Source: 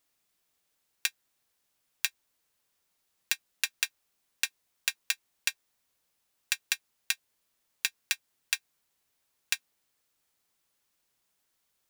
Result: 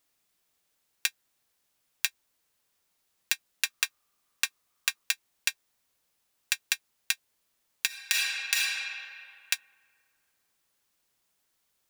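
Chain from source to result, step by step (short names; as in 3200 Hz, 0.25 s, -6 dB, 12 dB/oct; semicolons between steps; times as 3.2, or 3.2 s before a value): 3.65–5.05 bell 1200 Hz +12 dB 0.22 oct; 7.86–8.55 reverb throw, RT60 2.4 s, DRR -6.5 dB; gain +1.5 dB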